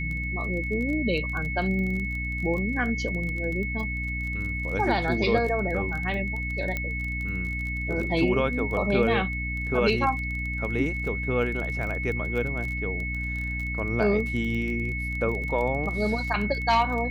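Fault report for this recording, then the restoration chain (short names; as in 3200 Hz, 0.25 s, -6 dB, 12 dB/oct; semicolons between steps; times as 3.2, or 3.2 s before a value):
crackle 20/s -31 dBFS
hum 60 Hz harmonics 5 -32 dBFS
tone 2200 Hz -31 dBFS
6.77 pop -15 dBFS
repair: de-click; de-hum 60 Hz, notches 5; notch 2200 Hz, Q 30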